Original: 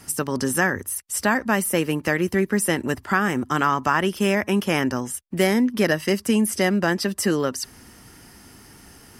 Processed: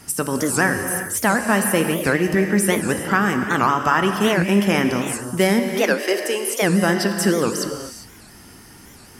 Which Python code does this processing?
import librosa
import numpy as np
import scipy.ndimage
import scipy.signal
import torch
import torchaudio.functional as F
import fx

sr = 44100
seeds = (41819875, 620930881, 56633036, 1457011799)

y = fx.steep_highpass(x, sr, hz=330.0, slope=36, at=(5.59, 6.62), fade=0.02)
y = fx.rev_gated(y, sr, seeds[0], gate_ms=430, shape='flat', drr_db=5.0)
y = fx.record_warp(y, sr, rpm=78.0, depth_cents=250.0)
y = F.gain(torch.from_numpy(y), 2.0).numpy()